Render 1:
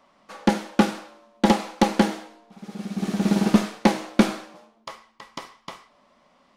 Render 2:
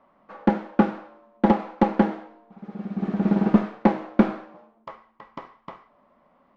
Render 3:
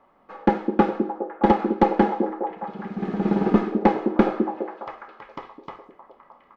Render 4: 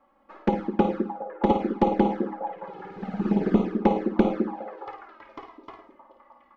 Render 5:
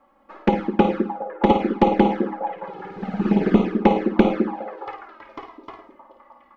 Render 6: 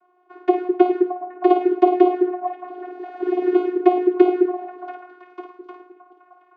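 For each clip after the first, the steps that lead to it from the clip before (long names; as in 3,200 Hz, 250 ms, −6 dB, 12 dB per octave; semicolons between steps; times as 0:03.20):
low-pass filter 1,500 Hz 12 dB per octave
comb filter 2.4 ms, depth 38%; echo through a band-pass that steps 206 ms, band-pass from 310 Hz, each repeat 0.7 octaves, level −3 dB; level +1.5 dB
flutter between parallel walls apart 9.2 metres, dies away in 0.41 s; flanger swept by the level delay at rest 3.7 ms, full sweep at −14.5 dBFS; level −2 dB
dynamic equaliser 2,500 Hz, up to +6 dB, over −47 dBFS, Q 1.1; level +4.5 dB
channel vocoder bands 16, saw 361 Hz; level +2.5 dB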